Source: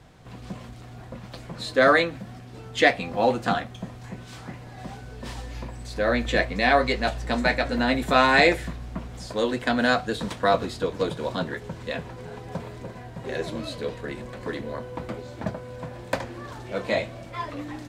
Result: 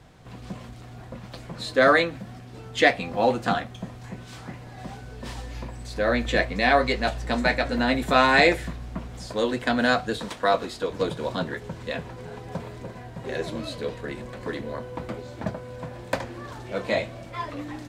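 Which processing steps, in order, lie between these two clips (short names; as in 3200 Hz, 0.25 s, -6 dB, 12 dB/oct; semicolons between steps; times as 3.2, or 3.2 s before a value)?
10.18–10.9 bell 100 Hz -10 dB 2.1 oct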